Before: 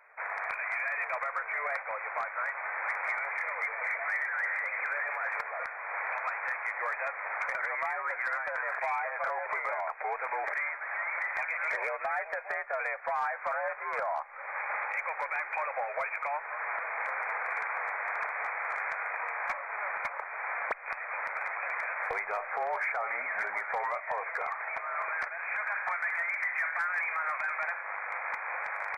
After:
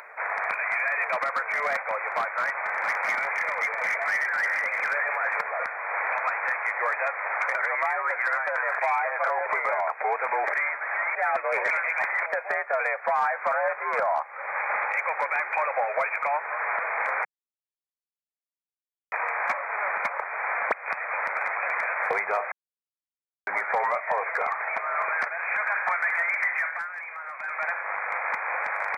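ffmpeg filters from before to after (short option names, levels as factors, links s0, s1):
-filter_complex "[0:a]asettb=1/sr,asplit=3[s0][s1][s2];[s0]atrim=end=1.124[s3];[s1]atrim=start=1.12:end=4.95,asetpts=PTS-STARTPTS,afade=t=in:d=0.004:c=qsin,afade=t=out:st=3.826:d=0.004:c=qsin,volume=22.4,asoftclip=hard,volume=0.0447[s4];[s2]atrim=start=4.946[s5];[s3][s4]acrossfade=d=0.004:c1=hsin:c2=qsin[s6];[s6][s5]acrossfade=d=0.004:c1=qsin:c2=hsin,asettb=1/sr,asplit=3[s7][s8][s9];[s7]atrim=end=7.064[s10];[s8]atrim=start=7.06:end=9.41,asetpts=PTS-STARTPTS,afade=t=in:d=0.004:c=qsin,afade=t=out:st=2.346:d=0.004:c=qsin,highpass=370[s11];[s9]atrim=start=9.406[s12];[s10][s11]acrossfade=d=0.004:c1=hsin:c2=qsin[s13];[s13][s12]acrossfade=d=0.004:c1=qsin:c2=hsin,asplit=9[s14][s15][s16][s17][s18][s19][s20][s21][s22];[s14]atrim=end=11.152[s23];[s15]atrim=start=11.148:end=12.262,asetpts=PTS-STARTPTS,areverse[s24];[s16]atrim=start=12.258:end=17.25,asetpts=PTS-STARTPTS,afade=t=out:st=4.988:d=0.004:c=hsin[s25];[s17]atrim=start=17.25:end=19.12,asetpts=PTS-STARTPTS,volume=0[s26];[s18]atrim=start=19.12:end=22.52,asetpts=PTS-STARTPTS,afade=t=in:d=0.004:c=hsin,afade=t=out:st=3.396:d=0.004:c=hsin[s27];[s19]atrim=start=22.52:end=23.47,asetpts=PTS-STARTPTS,volume=0[s28];[s20]atrim=start=23.47:end=26.9,asetpts=PTS-STARTPTS,afade=t=in:d=0.004:c=hsin,afade=t=out:st=3:d=0.43:silence=0.266073[s29];[s21]atrim=start=26.9:end=27.35,asetpts=PTS-STARTPTS,volume=0.266[s30];[s22]atrim=start=27.35,asetpts=PTS-STARTPTS,afade=t=in:d=0.43:silence=0.266073[s31];[s23][s24]acrossfade=d=0.004:c1=hsin:c2=hsin[s32];[s25][s26][s27][s28][s29][s30][s31]concat=n=7:v=0:a=1[s33];[s32][s33]acrossfade=d=0.004:c1=hsin:c2=hsin,highpass=f=160:w=0.5412,highpass=f=160:w=1.3066,lowshelf=f=390:g=7.5,acompressor=mode=upward:threshold=0.00631:ratio=2.5,volume=2"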